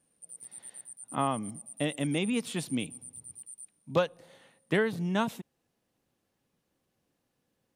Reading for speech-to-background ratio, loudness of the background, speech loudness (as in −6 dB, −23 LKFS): 13.0 dB, −44.5 LKFS, −31.5 LKFS